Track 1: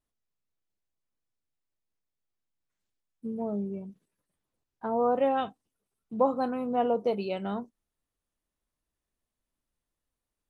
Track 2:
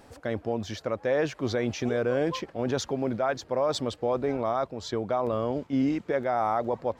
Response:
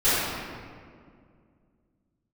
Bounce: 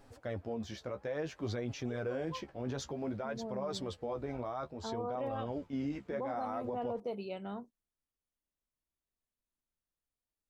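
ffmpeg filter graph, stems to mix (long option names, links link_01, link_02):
-filter_complex "[0:a]volume=-9dB[link_01];[1:a]lowshelf=frequency=69:gain=11.5,flanger=delay=6.9:depth=9.5:regen=27:speed=0.57:shape=triangular,volume=-5.5dB[link_02];[link_01][link_02]amix=inputs=2:normalize=0,alimiter=level_in=5dB:limit=-24dB:level=0:latency=1:release=48,volume=-5dB"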